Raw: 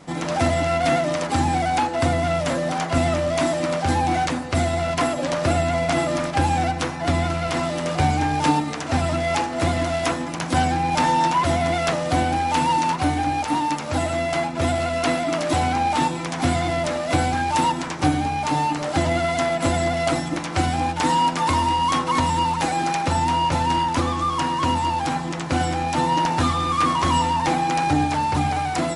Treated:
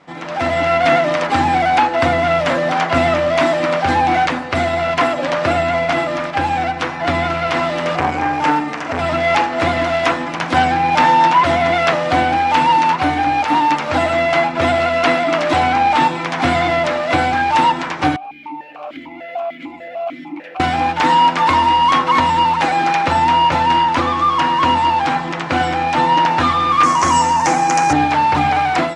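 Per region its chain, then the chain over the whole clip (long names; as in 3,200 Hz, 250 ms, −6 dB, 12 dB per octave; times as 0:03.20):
0:07.96–0:08.99: parametric band 3,800 Hz −5.5 dB 0.63 octaves + flutter between parallel walls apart 7.5 metres, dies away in 0.26 s + saturating transformer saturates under 760 Hz
0:18.16–0:20.60: downward compressor 5 to 1, threshold −24 dBFS + bad sample-rate conversion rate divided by 3×, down none, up zero stuff + formant filter that steps through the vowels 6.7 Hz
0:26.83–0:27.93: high-pass filter 42 Hz + high shelf with overshoot 4,900 Hz +10 dB, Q 3
whole clip: low-pass filter 2,300 Hz 12 dB per octave; spectral tilt +3 dB per octave; automatic gain control gain up to 11.5 dB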